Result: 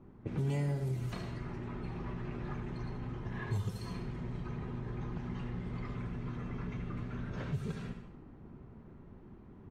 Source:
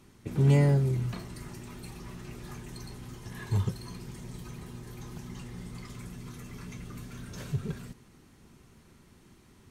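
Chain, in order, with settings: level-controlled noise filter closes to 830 Hz, open at -27 dBFS; feedback delay 76 ms, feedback 37%, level -10.5 dB; gain riding within 4 dB 2 s; reverberation RT60 0.45 s, pre-delay 51 ms, DRR 14.5 dB; compression 3:1, threshold -38 dBFS, peak gain reduction 15 dB; trim +2 dB; AAC 48 kbps 44.1 kHz

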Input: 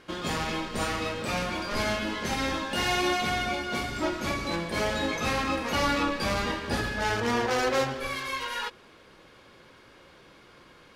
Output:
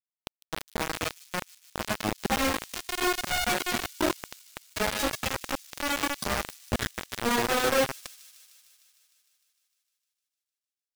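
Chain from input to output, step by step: loudest bins only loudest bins 8; 4.82–7.38 s: dynamic bell 350 Hz, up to -7 dB, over -48 dBFS, Q 2.2; saturation -19.5 dBFS, distortion -25 dB; rotary cabinet horn 0.75 Hz; bit crusher 5-bit; feedback echo behind a high-pass 152 ms, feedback 74%, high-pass 5.2 kHz, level -14 dB; trim +6 dB

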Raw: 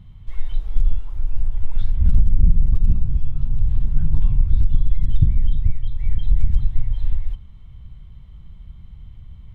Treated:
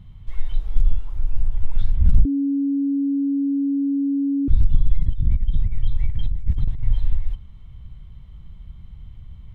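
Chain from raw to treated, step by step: 2.25–4.48 s: bleep 279 Hz -18 dBFS; 5.02–7.00 s: compressor with a negative ratio -15 dBFS, ratio -0.5

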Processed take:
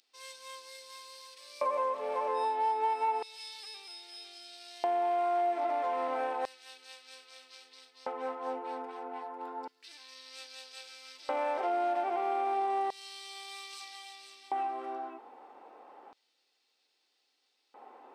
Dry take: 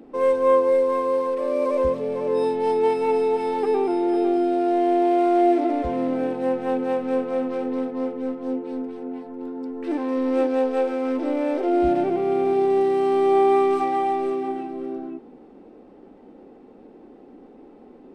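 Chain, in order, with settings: LFO high-pass square 0.31 Hz 900–4500 Hz; compression 4:1, threshold -29 dBFS, peak gain reduction 11 dB

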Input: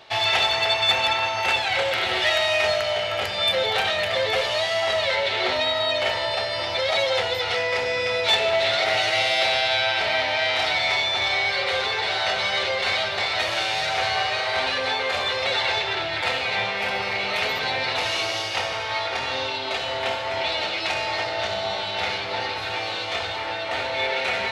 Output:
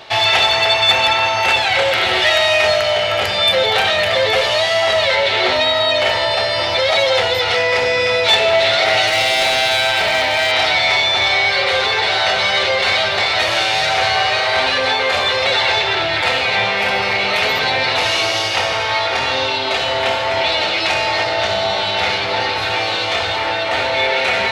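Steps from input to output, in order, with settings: in parallel at -0.5 dB: peak limiter -21 dBFS, peak gain reduction 10.5 dB; 9.07–10.52 s: on the sum: hard clipper -15.5 dBFS, distortion -25 dB; trim +4.5 dB

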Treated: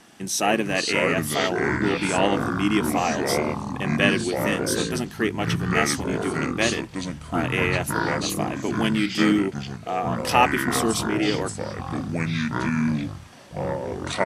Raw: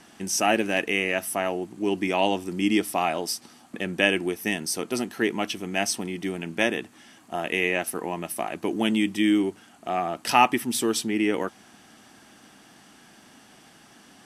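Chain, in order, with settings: ever faster or slower copies 390 ms, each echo -5 st, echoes 3; harmony voices -7 st -10 dB

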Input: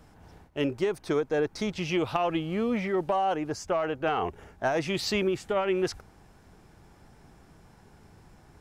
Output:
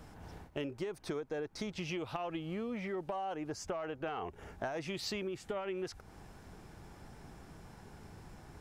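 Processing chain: compression 6:1, threshold -39 dBFS, peak gain reduction 15.5 dB; trim +2 dB

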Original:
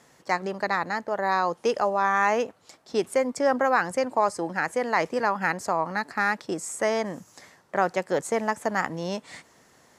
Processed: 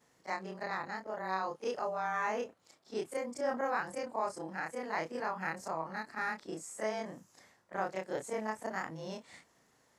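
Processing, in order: short-time spectra conjugated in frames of 74 ms; crackle 34 per s -57 dBFS; trim -8.5 dB

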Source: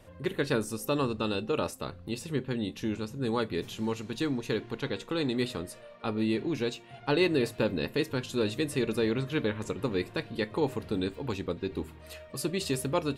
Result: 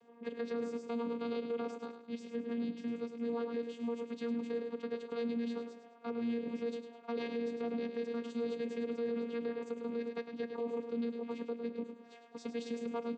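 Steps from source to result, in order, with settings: rattle on loud lows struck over -38 dBFS, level -35 dBFS; on a send: feedback delay 104 ms, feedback 36%, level -9.5 dB; on the sum: vocoder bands 16, saw 234 Hz; comb 2.4 ms, depth 38%; peak limiter -26.5 dBFS, peak gain reduction 10.5 dB; trim -2.5 dB

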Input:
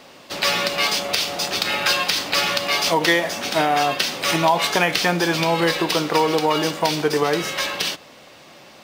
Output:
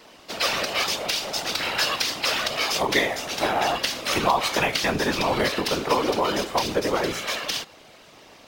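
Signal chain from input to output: whisper effect; speed mistake 24 fps film run at 25 fps; trim -4 dB

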